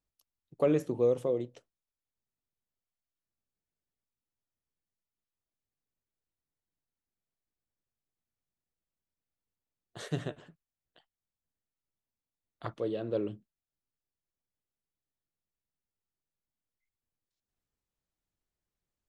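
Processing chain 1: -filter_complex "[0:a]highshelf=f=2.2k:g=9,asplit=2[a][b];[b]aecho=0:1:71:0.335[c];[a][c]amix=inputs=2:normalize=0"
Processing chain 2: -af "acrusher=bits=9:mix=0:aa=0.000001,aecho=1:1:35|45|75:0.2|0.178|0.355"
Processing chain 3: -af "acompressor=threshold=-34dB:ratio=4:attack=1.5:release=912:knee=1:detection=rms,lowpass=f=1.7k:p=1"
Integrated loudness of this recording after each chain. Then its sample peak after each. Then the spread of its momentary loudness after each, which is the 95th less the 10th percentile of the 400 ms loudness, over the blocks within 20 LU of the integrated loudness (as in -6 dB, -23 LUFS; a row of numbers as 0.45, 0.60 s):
-32.0, -31.5, -43.5 LUFS; -15.0, -15.0, -26.5 dBFS; 16, 17, 15 LU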